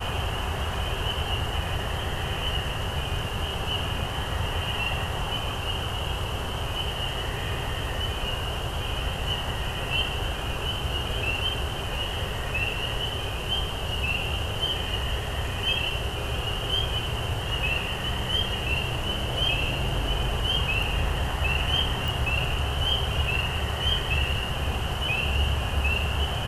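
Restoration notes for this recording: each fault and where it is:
22.08 pop

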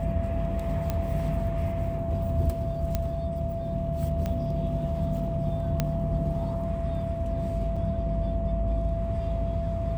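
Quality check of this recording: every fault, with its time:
tone 670 Hz -32 dBFS
0.9 pop -15 dBFS
2.95 pop -13 dBFS
4.26 pop -18 dBFS
5.8 pop -11 dBFS
7.76 gap 5 ms

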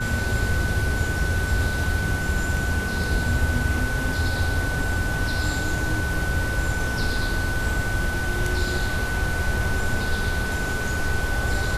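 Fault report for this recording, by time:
tone 1500 Hz -28 dBFS

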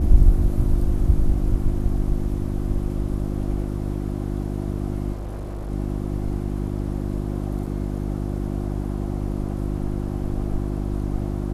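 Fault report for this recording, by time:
hum 50 Hz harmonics 7 -26 dBFS
5.12–5.71 clipped -27 dBFS
7.66 gap 4.9 ms

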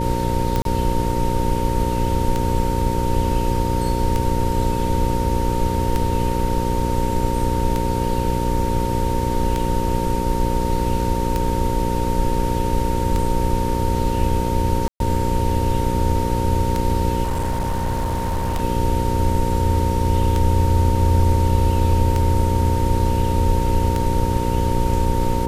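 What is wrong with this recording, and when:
buzz 60 Hz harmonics 9 -23 dBFS
tick 33 1/3 rpm -8 dBFS
tone 920 Hz -25 dBFS
0.62–0.65 gap 32 ms
14.88–15 gap 0.122 s
17.23–18.63 clipped -18 dBFS

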